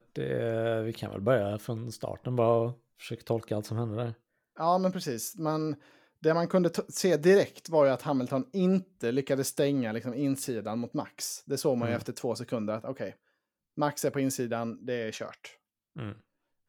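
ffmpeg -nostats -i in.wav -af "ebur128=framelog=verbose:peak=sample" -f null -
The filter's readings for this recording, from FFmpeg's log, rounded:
Integrated loudness:
  I:         -30.0 LUFS
  Threshold: -40.5 LUFS
Loudness range:
  LRA:         6.6 LU
  Threshold: -50.3 LUFS
  LRA low:   -33.7 LUFS
  LRA high:  -27.1 LUFS
Sample peak:
  Peak:      -11.0 dBFS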